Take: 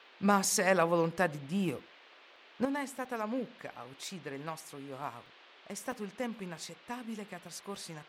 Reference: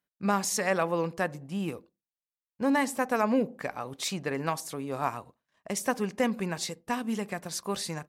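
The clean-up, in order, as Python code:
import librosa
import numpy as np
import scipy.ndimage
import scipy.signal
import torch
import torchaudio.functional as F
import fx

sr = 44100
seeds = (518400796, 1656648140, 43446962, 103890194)

y = fx.fix_interpolate(x, sr, at_s=(2.36, 3.05, 5.26, 5.92), length_ms=2.7)
y = fx.noise_reduce(y, sr, print_start_s=2.08, print_end_s=2.58, reduce_db=29.0)
y = fx.fix_level(y, sr, at_s=2.65, step_db=10.0)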